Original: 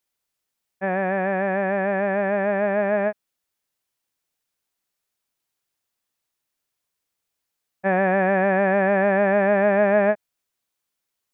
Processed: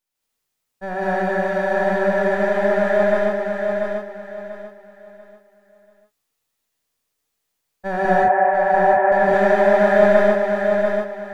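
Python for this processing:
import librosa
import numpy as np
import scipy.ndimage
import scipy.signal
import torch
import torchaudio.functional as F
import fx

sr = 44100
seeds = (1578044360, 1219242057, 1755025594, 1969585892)

y = np.where(x < 0.0, 10.0 ** (-7.0 / 20.0) * x, x)
y = fx.cabinet(y, sr, low_hz=480.0, low_slope=12, high_hz=2000.0, hz=(520.0, 750.0, 1400.0), db=(-3, 9, -5), at=(8.05, 9.12))
y = fx.echo_feedback(y, sr, ms=690, feedback_pct=30, wet_db=-5)
y = fx.rev_gated(y, sr, seeds[0], gate_ms=250, shape='rising', drr_db=-7.5)
y = y * 10.0 ** (-2.0 / 20.0)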